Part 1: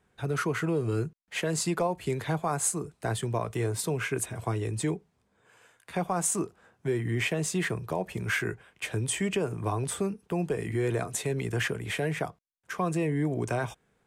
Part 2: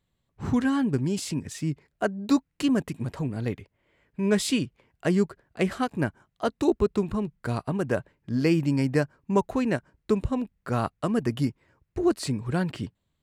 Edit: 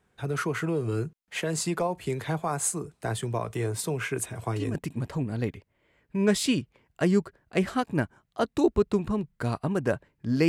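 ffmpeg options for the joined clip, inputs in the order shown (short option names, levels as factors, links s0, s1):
-filter_complex "[1:a]asplit=2[s0][s1];[0:a]apad=whole_dur=10.48,atrim=end=10.48,atrim=end=4.752[s2];[s1]atrim=start=2.788:end=8.52[s3];[s0]atrim=start=2.38:end=2.79,asetpts=PTS-STARTPTS,volume=0.251,afade=t=in:d=0.004:c=hsin,afade=t=out:st=0.406:d=0.004:c=hsin,adelay=4340[s4];[s2][s3]acrossfade=d=0.004:c1=hsin:c2=hsin[s5];[s5][s4]amix=inputs=2:normalize=0"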